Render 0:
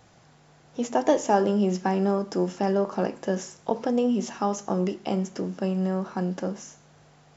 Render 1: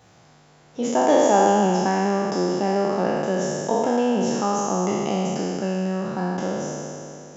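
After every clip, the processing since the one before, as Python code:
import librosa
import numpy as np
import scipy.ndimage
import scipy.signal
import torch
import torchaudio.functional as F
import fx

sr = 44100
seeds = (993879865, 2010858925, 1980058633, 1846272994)

y = fx.spec_trails(x, sr, decay_s=2.83)
y = scipy.signal.sosfilt(scipy.signal.butter(2, 49.0, 'highpass', fs=sr, output='sos'), y)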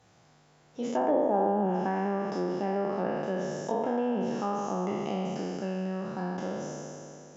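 y = fx.env_lowpass_down(x, sr, base_hz=900.0, full_db=-13.0)
y = y * 10.0 ** (-8.0 / 20.0)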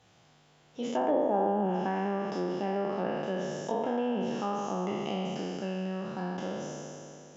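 y = fx.peak_eq(x, sr, hz=3100.0, db=7.0, octaves=0.66)
y = y * 10.0 ** (-1.5 / 20.0)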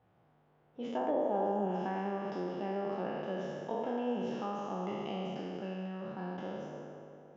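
y = fx.echo_stepped(x, sr, ms=100, hz=390.0, octaves=0.7, feedback_pct=70, wet_db=-6.5)
y = fx.env_lowpass(y, sr, base_hz=1300.0, full_db=-22.0)
y = y * 10.0 ** (-5.5 / 20.0)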